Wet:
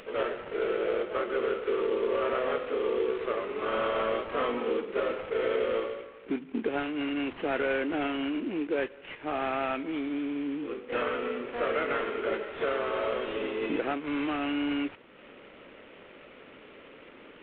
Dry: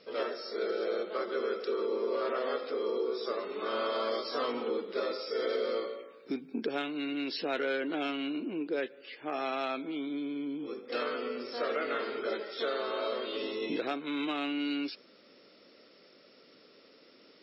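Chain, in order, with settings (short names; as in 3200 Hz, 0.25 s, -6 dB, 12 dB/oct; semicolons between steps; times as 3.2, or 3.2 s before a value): CVSD 16 kbps; upward compressor, threshold -47 dBFS; gain +4 dB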